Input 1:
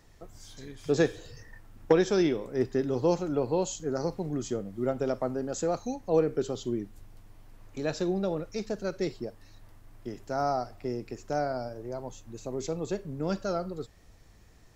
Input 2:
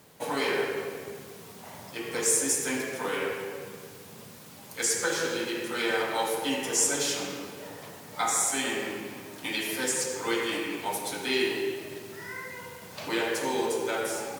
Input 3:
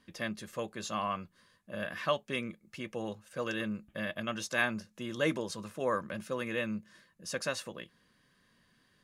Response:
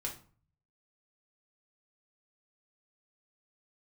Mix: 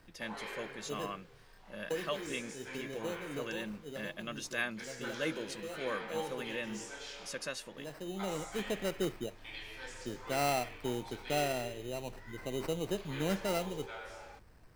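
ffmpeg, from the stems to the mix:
-filter_complex "[0:a]acrusher=samples=13:mix=1:aa=0.000001,volume=0.668,asplit=2[s0][s1];[s1]volume=0.106[s2];[1:a]acrossover=split=520 5100:gain=0.224 1 0.112[s3][s4][s5];[s3][s4][s5]amix=inputs=3:normalize=0,flanger=delay=20:depth=6.4:speed=0.17,volume=0.316[s6];[2:a]highpass=f=230:p=1,equalizer=f=910:t=o:w=1.3:g=-6,volume=0.708,asplit=2[s7][s8];[s8]apad=whole_len=650493[s9];[s0][s9]sidechaincompress=threshold=0.002:ratio=12:attack=7.4:release=713[s10];[3:a]atrim=start_sample=2205[s11];[s2][s11]afir=irnorm=-1:irlink=0[s12];[s10][s6][s7][s12]amix=inputs=4:normalize=0"

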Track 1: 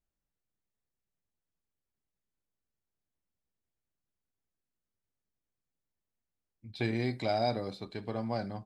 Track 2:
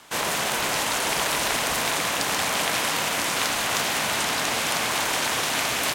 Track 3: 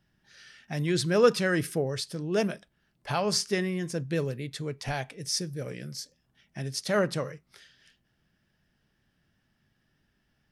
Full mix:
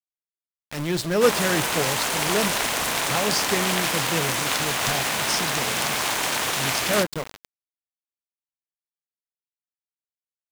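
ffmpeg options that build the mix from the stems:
-filter_complex "[0:a]highpass=200,volume=0.422[s0];[1:a]adelay=1100,volume=1.06[s1];[2:a]volume=1.26[s2];[s0][s1][s2]amix=inputs=3:normalize=0,aeval=exprs='val(0)*gte(abs(val(0)),0.0473)':c=same"

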